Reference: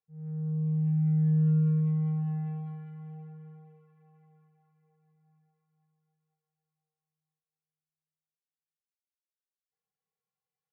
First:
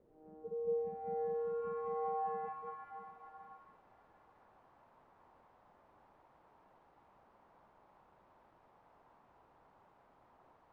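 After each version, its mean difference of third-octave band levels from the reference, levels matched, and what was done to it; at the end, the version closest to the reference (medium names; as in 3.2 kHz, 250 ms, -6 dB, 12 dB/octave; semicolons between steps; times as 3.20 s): 9.0 dB: spectral gate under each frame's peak -25 dB weak; peak limiter -49 dBFS, peak gain reduction 6.5 dB; word length cut 12-bit, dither triangular; low-pass sweep 440 Hz -> 910 Hz, 0.43–1.53 s; trim +13.5 dB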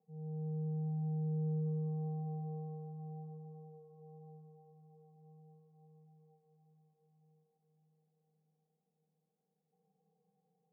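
2.5 dB: spectral levelling over time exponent 0.6; elliptic band-pass 190–790 Hz, stop band 40 dB; on a send: echo that smears into a reverb 643 ms, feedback 63%, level -15.5 dB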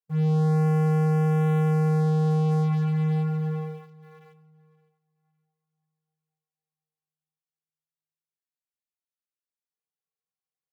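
7.0 dB: high-pass 93 Hz 12 dB/octave; waveshaping leveller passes 5; peak limiter -23 dBFS, peak gain reduction 3 dB; on a send: feedback delay 563 ms, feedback 27%, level -20 dB; on the sum: trim +3 dB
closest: second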